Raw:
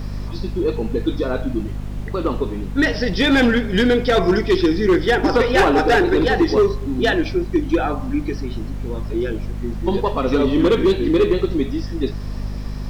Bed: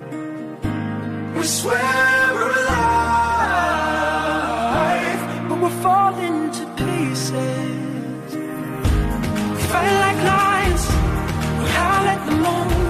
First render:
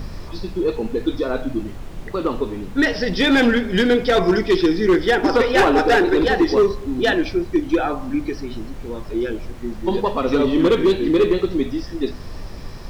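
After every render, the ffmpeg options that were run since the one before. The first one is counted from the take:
ffmpeg -i in.wav -af "bandreject=frequency=50:width_type=h:width=4,bandreject=frequency=100:width_type=h:width=4,bandreject=frequency=150:width_type=h:width=4,bandreject=frequency=200:width_type=h:width=4,bandreject=frequency=250:width_type=h:width=4" out.wav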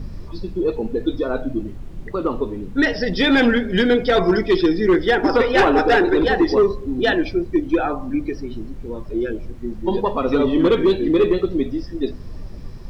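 ffmpeg -i in.wav -af "afftdn=noise_reduction=10:noise_floor=-33" out.wav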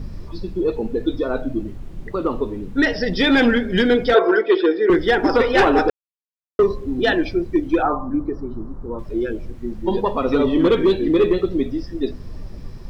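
ffmpeg -i in.wav -filter_complex "[0:a]asettb=1/sr,asplit=3[link_01][link_02][link_03];[link_01]atrim=end=4.144[link_04];[link_02]atrim=start=4.14:end=4.9,asetpts=PTS-STARTPTS,afade=type=in:duration=0.004:curve=qsin,afade=type=out:start_time=0.756:duration=0.004:curve=qsin,highpass=frequency=340:width=0.5412,highpass=frequency=340:width=1.3066,equalizer=frequency=480:width_type=q:width=4:gain=9,equalizer=frequency=1500:width_type=q:width=4:gain=9,equalizer=frequency=2100:width_type=q:width=4:gain=-4,lowpass=frequency=3600:width=0.5412,lowpass=frequency=3600:width=1.3066[link_05];[link_03]atrim=start=4.896[link_06];[link_04][link_05]acrossfade=duration=0.004:curve1=hsin:curve2=qsin[link_07];[link_07][link_06]acrossfade=duration=0.004:curve1=qsin:curve2=hsin,asettb=1/sr,asplit=3[link_08][link_09][link_10];[link_08]atrim=end=7.824[link_11];[link_09]atrim=start=7.82:end=8.99,asetpts=PTS-STARTPTS,afade=type=in:duration=0.004:curve=qsin,afade=type=out:start_time=1.166:duration=0.004:curve=qsin,highshelf=frequency=1700:width_type=q:width=3:gain=-13.5[link_12];[link_10]atrim=start=8.986[link_13];[link_11][link_12]acrossfade=duration=0.004:curve1=hsin:curve2=qsin[link_14];[link_14][link_13]acrossfade=duration=0.004:curve1=qsin:curve2=hsin,asplit=3[link_15][link_16][link_17];[link_15]atrim=end=5.9,asetpts=PTS-STARTPTS,afade=type=out:start_time=5.896:duration=0.004:curve=hsin[link_18];[link_16]atrim=start=5.9:end=6.59,asetpts=PTS-STARTPTS,volume=0[link_19];[link_17]atrim=start=6.59,asetpts=PTS-STARTPTS,afade=type=in:duration=0.004:curve=hsin[link_20];[link_18][link_19][link_20]concat=n=3:v=0:a=1" out.wav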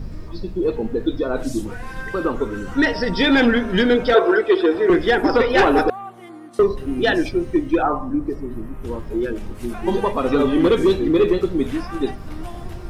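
ffmpeg -i in.wav -i bed.wav -filter_complex "[1:a]volume=-18dB[link_01];[0:a][link_01]amix=inputs=2:normalize=0" out.wav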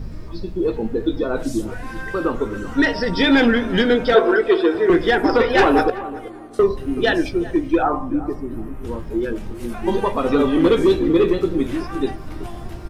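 ffmpeg -i in.wav -filter_complex "[0:a]asplit=2[link_01][link_02];[link_02]adelay=18,volume=-12.5dB[link_03];[link_01][link_03]amix=inputs=2:normalize=0,asplit=2[link_04][link_05];[link_05]adelay=379,lowpass=frequency=1400:poles=1,volume=-15.5dB,asplit=2[link_06][link_07];[link_07]adelay=379,lowpass=frequency=1400:poles=1,volume=0.25,asplit=2[link_08][link_09];[link_09]adelay=379,lowpass=frequency=1400:poles=1,volume=0.25[link_10];[link_04][link_06][link_08][link_10]amix=inputs=4:normalize=0" out.wav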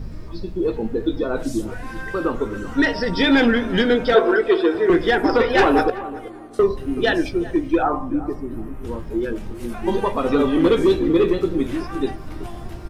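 ffmpeg -i in.wav -af "volume=-1dB" out.wav

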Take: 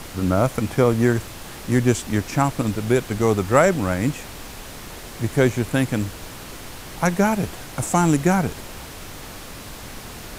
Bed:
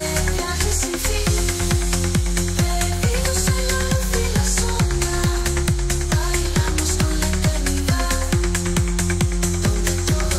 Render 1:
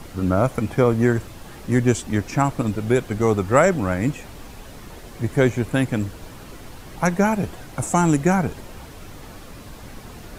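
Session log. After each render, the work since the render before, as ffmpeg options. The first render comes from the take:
ffmpeg -i in.wav -af "afftdn=noise_reduction=8:noise_floor=-37" out.wav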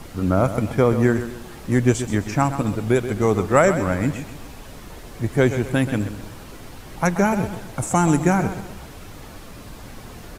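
ffmpeg -i in.wav -af "aecho=1:1:130|260|390|520:0.282|0.107|0.0407|0.0155" out.wav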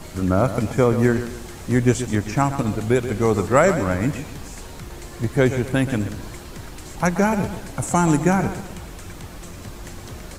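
ffmpeg -i in.wav -i bed.wav -filter_complex "[1:a]volume=-20dB[link_01];[0:a][link_01]amix=inputs=2:normalize=0" out.wav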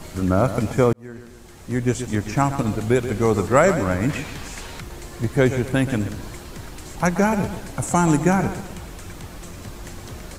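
ffmpeg -i in.wav -filter_complex "[0:a]asettb=1/sr,asplit=3[link_01][link_02][link_03];[link_01]atrim=end=4.094[link_04];[link_02]atrim=start=4.09:end=4.81,asetpts=PTS-STARTPTS,afade=type=in:duration=0.004:curve=qsin,afade=type=out:start_time=0.716:duration=0.004:curve=qsin,equalizer=frequency=2400:width_type=o:width=2.4:gain=7.5[link_05];[link_03]atrim=start=4.806[link_06];[link_04][link_05]acrossfade=duration=0.004:curve1=hsin:curve2=qsin[link_07];[link_07][link_06]acrossfade=duration=0.004:curve1=qsin:curve2=hsin,asplit=2[link_08][link_09];[link_08]atrim=end=0.93,asetpts=PTS-STARTPTS,afade=type=out:start_time=0.926:duration=0.004:curve=hsin[link_10];[link_09]atrim=start=0.93,asetpts=PTS-STARTPTS,afade=type=in:duration=1.47[link_11];[link_10][link_11]concat=n=2:v=0:a=1" out.wav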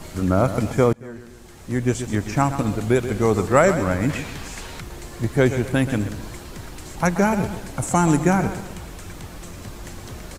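ffmpeg -i in.wav -filter_complex "[0:a]asplit=2[link_01][link_02];[link_02]adelay=227.4,volume=-24dB,highshelf=frequency=4000:gain=-5.12[link_03];[link_01][link_03]amix=inputs=2:normalize=0" out.wav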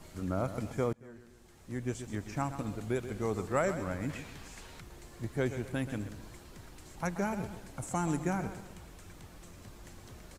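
ffmpeg -i in.wav -af "volume=-14.5dB" out.wav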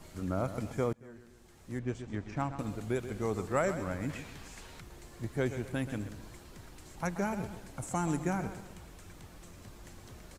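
ffmpeg -i in.wav -filter_complex "[0:a]asettb=1/sr,asplit=3[link_01][link_02][link_03];[link_01]atrim=end=1.794[link_04];[link_02]atrim=start=1.79:end=2.59,asetpts=PTS-STARTPTS,afade=type=in:duration=0.004:curve=qsin,afade=type=out:start_time=0.796:duration=0.004:curve=qsin,adynamicsmooth=sensitivity=7:basefreq=4000[link_05];[link_03]atrim=start=2.586[link_06];[link_04][link_05]acrossfade=duration=0.004:curve1=hsin:curve2=qsin[link_07];[link_07][link_06]acrossfade=duration=0.004:curve1=qsin:curve2=hsin" out.wav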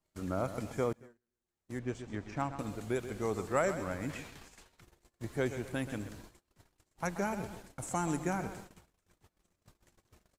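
ffmpeg -i in.wav -af "agate=range=-31dB:threshold=-46dB:ratio=16:detection=peak,bass=frequency=250:gain=-4,treble=frequency=4000:gain=1" out.wav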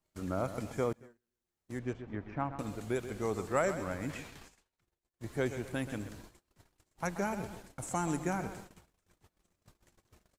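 ffmpeg -i in.wav -filter_complex "[0:a]asettb=1/sr,asplit=3[link_01][link_02][link_03];[link_01]atrim=end=1.934[link_04];[link_02]atrim=start=1.93:end=2.59,asetpts=PTS-STARTPTS,afade=type=in:duration=0.004:curve=qsin,afade=type=out:start_time=0.656:duration=0.004:curve=qsin,lowpass=2200[link_05];[link_03]atrim=start=2.586[link_06];[link_04][link_05]acrossfade=duration=0.004:curve1=hsin:curve2=qsin[link_07];[link_07][link_06]acrossfade=duration=0.004:curve1=qsin:curve2=hsin,asplit=3[link_08][link_09][link_10];[link_08]atrim=end=4.66,asetpts=PTS-STARTPTS,afade=type=out:start_time=4.46:duration=0.2:curve=qua:silence=0.0944061[link_11];[link_09]atrim=start=4.66:end=5.07,asetpts=PTS-STARTPTS,volume=-20.5dB[link_12];[link_10]atrim=start=5.07,asetpts=PTS-STARTPTS,afade=type=in:duration=0.2:curve=qua:silence=0.0944061[link_13];[link_11][link_12][link_13]concat=n=3:v=0:a=1" out.wav

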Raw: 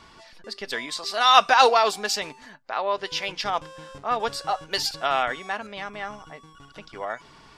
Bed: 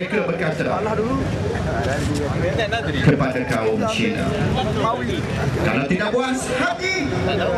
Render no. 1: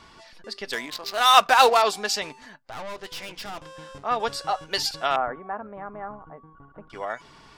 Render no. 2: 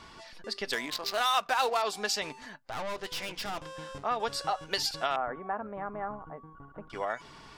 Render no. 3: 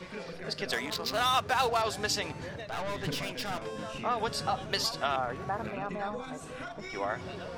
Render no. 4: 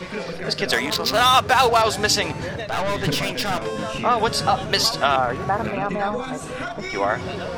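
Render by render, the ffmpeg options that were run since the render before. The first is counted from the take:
ffmpeg -i in.wav -filter_complex "[0:a]asettb=1/sr,asplit=3[link_01][link_02][link_03];[link_01]atrim=end=0.734[link_04];[link_02]atrim=start=0.73:end=1.82,asetpts=PTS-STARTPTS,afade=type=in:duration=0.004:curve=qsin,afade=type=out:start_time=1.086:duration=0.004:curve=qsin,adynamicsmooth=sensitivity=6:basefreq=720[link_05];[link_03]atrim=start=1.816[link_06];[link_04][link_05]acrossfade=duration=0.004:curve1=hsin:curve2=qsin[link_07];[link_07][link_06]acrossfade=duration=0.004:curve1=qsin:curve2=hsin,asettb=1/sr,asplit=3[link_08][link_09][link_10];[link_08]atrim=end=2.564[link_11];[link_09]atrim=start=2.56:end=3.66,asetpts=PTS-STARTPTS,afade=type=in:duration=0.004:curve=qsin,afade=type=out:start_time=1.096:duration=0.004:curve=qsin,aeval=exprs='(tanh(44.7*val(0)+0.65)-tanh(0.65))/44.7':channel_layout=same[link_12];[link_10]atrim=start=3.656[link_13];[link_11][link_12]acrossfade=duration=0.004:curve1=hsin:curve2=qsin[link_14];[link_14][link_13]acrossfade=duration=0.004:curve1=qsin:curve2=hsin,asettb=1/sr,asplit=3[link_15][link_16][link_17];[link_15]atrim=end=5.164[link_18];[link_16]atrim=start=5.16:end=6.9,asetpts=PTS-STARTPTS,afade=type=in:duration=0.004:curve=qsin,afade=type=out:start_time=1.736:duration=0.004:curve=qsin,lowpass=frequency=1300:width=0.5412,lowpass=frequency=1300:width=1.3066[link_19];[link_17]atrim=start=6.896[link_20];[link_18][link_19]acrossfade=duration=0.004:curve1=hsin:curve2=qsin[link_21];[link_21][link_20]acrossfade=duration=0.004:curve1=qsin:curve2=hsin" out.wav
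ffmpeg -i in.wav -af "acompressor=threshold=-28dB:ratio=3" out.wav
ffmpeg -i in.wav -i bed.wav -filter_complex "[1:a]volume=-21dB[link_01];[0:a][link_01]amix=inputs=2:normalize=0" out.wav
ffmpeg -i in.wav -af "volume=11.5dB,alimiter=limit=-3dB:level=0:latency=1" out.wav

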